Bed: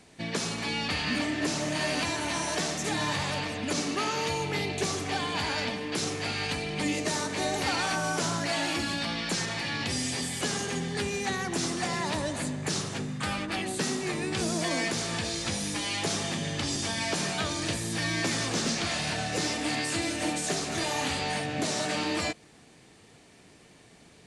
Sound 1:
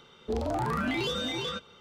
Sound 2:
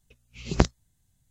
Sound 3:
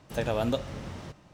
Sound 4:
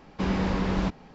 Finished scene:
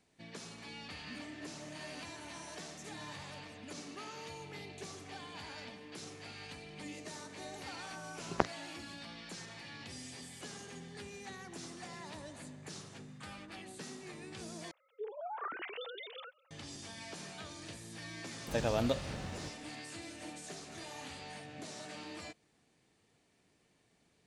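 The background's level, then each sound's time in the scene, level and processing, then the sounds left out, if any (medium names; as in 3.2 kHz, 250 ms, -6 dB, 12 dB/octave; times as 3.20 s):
bed -17 dB
7.80 s: add 2 -2.5 dB + band-pass filter 1 kHz, Q 0.85
14.71 s: replace with 1 -13 dB + formants replaced by sine waves
18.37 s: add 3 -4 dB
not used: 4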